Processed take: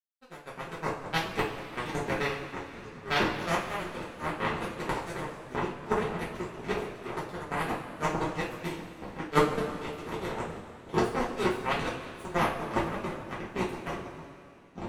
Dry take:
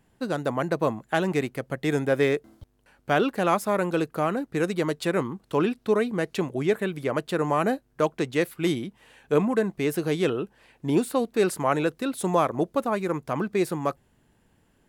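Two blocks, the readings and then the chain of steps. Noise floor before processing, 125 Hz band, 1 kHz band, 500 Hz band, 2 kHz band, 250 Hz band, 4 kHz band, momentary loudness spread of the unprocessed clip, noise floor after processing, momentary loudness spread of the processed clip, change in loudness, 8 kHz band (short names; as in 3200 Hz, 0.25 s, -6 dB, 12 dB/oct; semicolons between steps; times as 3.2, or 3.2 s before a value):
-66 dBFS, -6.0 dB, -3.0 dB, -8.5 dB, -2.0 dB, -8.5 dB, -1.0 dB, 6 LU, -50 dBFS, 12 LU, -6.5 dB, -6.5 dB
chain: echoes that change speed 0.249 s, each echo -5 st, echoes 3; requantised 12-bit, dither triangular; power-law curve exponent 3; two-slope reverb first 0.33 s, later 2.9 s, from -16 dB, DRR -8 dB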